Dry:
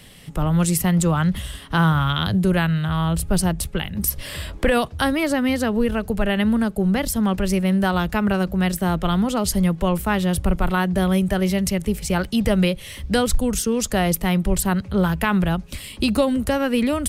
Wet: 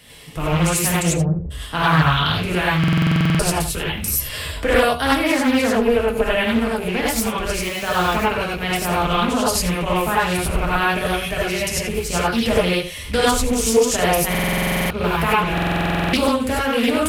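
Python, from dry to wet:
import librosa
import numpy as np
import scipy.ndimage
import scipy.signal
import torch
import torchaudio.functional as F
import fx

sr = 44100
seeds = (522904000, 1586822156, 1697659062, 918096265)

y = fx.rattle_buzz(x, sr, strikes_db=-21.0, level_db=-23.0)
y = fx.cheby1_lowpass(y, sr, hz=520.0, order=3, at=(1.05, 1.5), fade=0.02)
y = fx.quant_dither(y, sr, seeds[0], bits=6, dither='none', at=(7.54, 8.16))
y = fx.low_shelf(y, sr, hz=250.0, db=-7.5)
y = fx.notch_comb(y, sr, f0_hz=190.0)
y = y + 10.0 ** (-12.0 / 20.0) * np.pad(y, (int(80 * sr / 1000.0), 0))[:len(y)]
y = fx.rev_gated(y, sr, seeds[1], gate_ms=120, shape='rising', drr_db=-5.5)
y = fx.buffer_glitch(y, sr, at_s=(2.79, 14.3, 15.53), block=2048, repeats=12)
y = fx.doppler_dist(y, sr, depth_ms=0.47)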